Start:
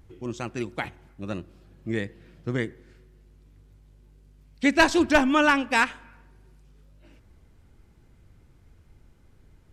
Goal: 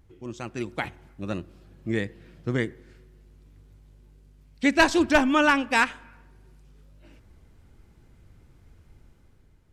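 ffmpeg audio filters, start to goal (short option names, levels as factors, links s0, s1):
-af "dynaudnorm=f=130:g=9:m=2,volume=0.596"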